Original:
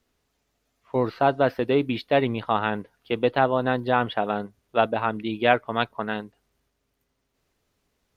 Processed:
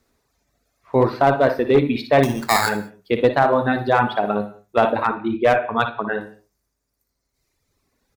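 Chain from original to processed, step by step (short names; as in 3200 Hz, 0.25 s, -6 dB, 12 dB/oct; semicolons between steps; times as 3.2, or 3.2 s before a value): 5.09–6.21 formant sharpening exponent 1.5; bell 3000 Hz -10.5 dB 0.32 oct; early reflections 58 ms -5.5 dB, 79 ms -10.5 dB; reverb removal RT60 1.8 s; 2.23–2.69 sample-rate reducer 3000 Hz, jitter 0%; non-linear reverb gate 0.23 s falling, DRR 11.5 dB; one-sided clip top -16.5 dBFS, bottom -6 dBFS; maximiser +9 dB; gain -2.5 dB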